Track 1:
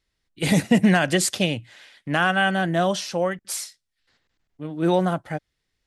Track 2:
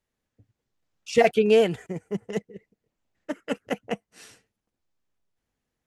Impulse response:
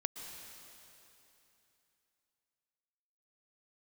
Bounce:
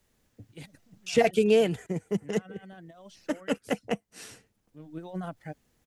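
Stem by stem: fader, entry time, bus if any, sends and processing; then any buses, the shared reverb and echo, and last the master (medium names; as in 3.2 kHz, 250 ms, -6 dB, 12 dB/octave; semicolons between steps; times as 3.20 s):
-15.5 dB, 0.15 s, no send, compressor with a negative ratio -22 dBFS, ratio -0.5; reverb removal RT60 0.95 s; auto duck -12 dB, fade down 0.75 s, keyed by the second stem
-3.0 dB, 0.00 s, no send, treble shelf 4.3 kHz +6.5 dB; three bands compressed up and down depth 40%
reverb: none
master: bass shelf 430 Hz +5 dB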